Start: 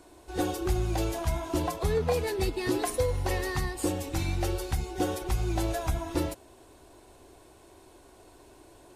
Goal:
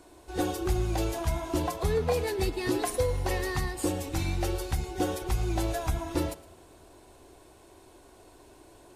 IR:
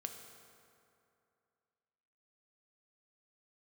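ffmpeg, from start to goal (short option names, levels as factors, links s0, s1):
-filter_complex "[0:a]asplit=2[s0][s1];[1:a]atrim=start_sample=2205,adelay=113[s2];[s1][s2]afir=irnorm=-1:irlink=0,volume=0.168[s3];[s0][s3]amix=inputs=2:normalize=0"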